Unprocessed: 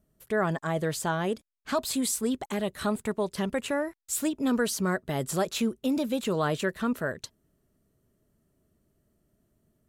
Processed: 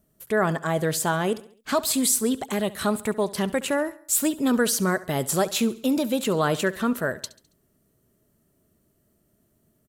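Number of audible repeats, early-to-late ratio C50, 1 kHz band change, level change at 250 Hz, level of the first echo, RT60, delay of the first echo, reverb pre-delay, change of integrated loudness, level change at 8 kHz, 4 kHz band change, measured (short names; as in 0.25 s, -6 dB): 3, none, +4.5 dB, +4.0 dB, -18.5 dB, none, 69 ms, none, +5.0 dB, +8.0 dB, +5.5 dB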